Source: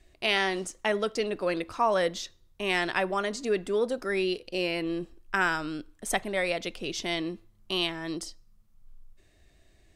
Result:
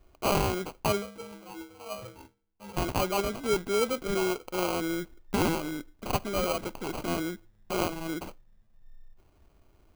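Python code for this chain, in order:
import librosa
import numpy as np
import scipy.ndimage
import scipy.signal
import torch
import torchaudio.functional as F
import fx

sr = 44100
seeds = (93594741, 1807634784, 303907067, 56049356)

y = fx.stiff_resonator(x, sr, f0_hz=96.0, decay_s=0.81, stiffness=0.03, at=(1.01, 2.76), fade=0.02)
y = fx.sample_hold(y, sr, seeds[0], rate_hz=1800.0, jitter_pct=0)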